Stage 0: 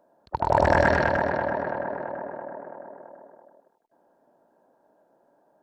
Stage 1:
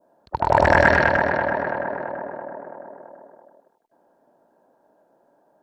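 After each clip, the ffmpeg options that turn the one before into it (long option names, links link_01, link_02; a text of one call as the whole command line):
ffmpeg -i in.wav -af "adynamicequalizer=threshold=0.0141:dfrequency=2100:dqfactor=0.88:tfrequency=2100:tqfactor=0.88:attack=5:release=100:ratio=0.375:range=3:mode=boostabove:tftype=bell,volume=2.5dB" out.wav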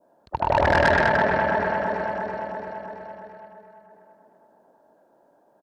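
ffmpeg -i in.wav -filter_complex "[0:a]aecho=1:1:338|676|1014|1352|1690|2028|2366:0.355|0.206|0.119|0.0692|0.0402|0.0233|0.0135,acrossover=split=3400[link_01][link_02];[link_02]acompressor=threshold=-50dB:ratio=4:attack=1:release=60[link_03];[link_01][link_03]amix=inputs=2:normalize=0,asoftclip=type=tanh:threshold=-12dB" out.wav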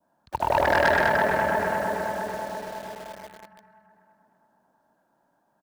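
ffmpeg -i in.wav -filter_complex "[0:a]acrossover=split=270|800[link_01][link_02][link_03];[link_01]alimiter=level_in=5.5dB:limit=-24dB:level=0:latency=1,volume=-5.5dB[link_04];[link_02]acrusher=bits=6:mix=0:aa=0.000001[link_05];[link_04][link_05][link_03]amix=inputs=3:normalize=0,volume=-1.5dB" out.wav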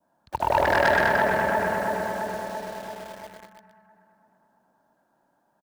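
ffmpeg -i in.wav -af "aecho=1:1:121:0.335" out.wav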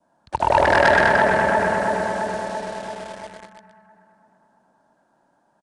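ffmpeg -i in.wav -af "aresample=22050,aresample=44100,volume=5dB" out.wav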